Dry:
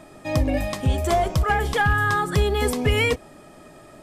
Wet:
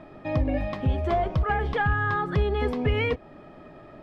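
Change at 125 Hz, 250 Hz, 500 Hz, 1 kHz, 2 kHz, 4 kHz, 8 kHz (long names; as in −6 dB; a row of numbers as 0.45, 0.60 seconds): −3.0 dB, −3.0 dB, −3.5 dB, −4.0 dB, −5.5 dB, −10.0 dB, below −25 dB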